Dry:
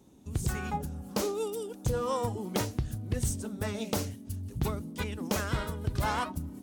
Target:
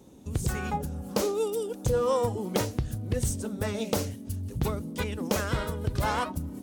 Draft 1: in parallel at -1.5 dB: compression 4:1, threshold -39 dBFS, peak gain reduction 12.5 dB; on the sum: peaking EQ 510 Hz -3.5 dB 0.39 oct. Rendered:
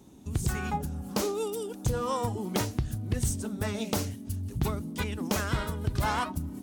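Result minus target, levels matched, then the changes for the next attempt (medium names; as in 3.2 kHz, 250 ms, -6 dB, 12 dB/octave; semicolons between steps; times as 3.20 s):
500 Hz band -3.5 dB
change: peaking EQ 510 Hz +5.5 dB 0.39 oct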